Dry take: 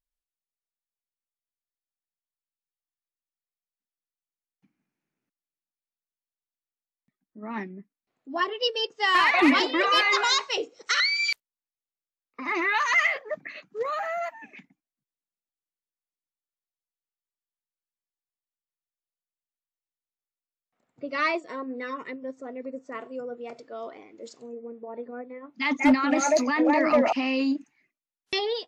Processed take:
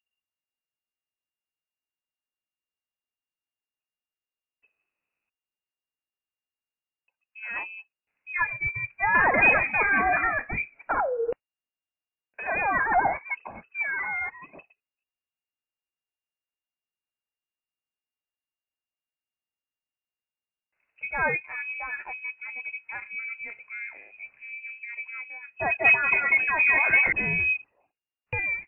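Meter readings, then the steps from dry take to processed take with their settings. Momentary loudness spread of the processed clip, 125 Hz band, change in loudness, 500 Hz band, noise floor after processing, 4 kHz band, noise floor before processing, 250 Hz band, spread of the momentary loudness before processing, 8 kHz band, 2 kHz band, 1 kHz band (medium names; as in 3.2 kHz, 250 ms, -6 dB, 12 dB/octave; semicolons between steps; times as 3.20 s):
18 LU, no reading, 0.0 dB, -5.0 dB, under -85 dBFS, under -25 dB, under -85 dBFS, -14.5 dB, 19 LU, under -40 dB, +4.0 dB, -0.5 dB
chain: frequency inversion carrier 2.8 kHz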